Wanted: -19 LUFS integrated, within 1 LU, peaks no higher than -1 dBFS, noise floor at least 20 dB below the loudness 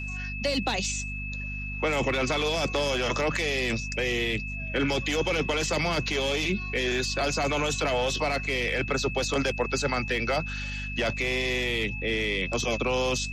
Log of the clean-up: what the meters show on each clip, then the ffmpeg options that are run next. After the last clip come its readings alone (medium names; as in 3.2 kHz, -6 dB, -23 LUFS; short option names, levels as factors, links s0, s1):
hum 50 Hz; highest harmonic 250 Hz; hum level -33 dBFS; steady tone 2.6 kHz; tone level -35 dBFS; loudness -27.0 LUFS; peak level -14.5 dBFS; loudness target -19.0 LUFS
-> -af "bandreject=f=50:t=h:w=4,bandreject=f=100:t=h:w=4,bandreject=f=150:t=h:w=4,bandreject=f=200:t=h:w=4,bandreject=f=250:t=h:w=4"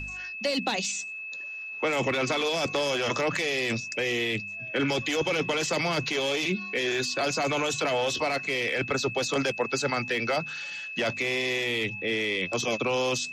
hum not found; steady tone 2.6 kHz; tone level -35 dBFS
-> -af "bandreject=f=2600:w=30"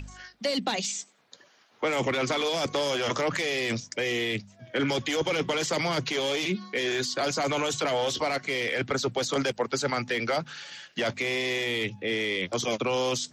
steady tone not found; loudness -28.0 LUFS; peak level -15.5 dBFS; loudness target -19.0 LUFS
-> -af "volume=2.82"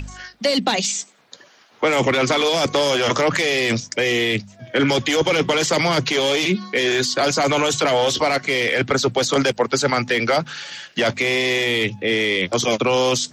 loudness -19.0 LUFS; peak level -6.5 dBFS; noise floor -52 dBFS